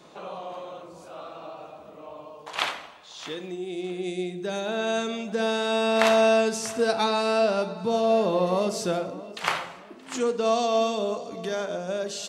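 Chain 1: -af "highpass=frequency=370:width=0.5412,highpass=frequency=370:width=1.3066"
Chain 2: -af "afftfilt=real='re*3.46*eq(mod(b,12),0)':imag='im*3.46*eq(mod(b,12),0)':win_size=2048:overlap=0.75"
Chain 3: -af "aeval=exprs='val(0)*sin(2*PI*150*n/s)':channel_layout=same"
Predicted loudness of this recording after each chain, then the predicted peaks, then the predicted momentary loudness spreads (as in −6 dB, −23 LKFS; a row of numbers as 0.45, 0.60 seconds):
−26.5, −31.5, −29.0 LKFS; −4.0, −13.5, −8.5 dBFS; 19, 17, 19 LU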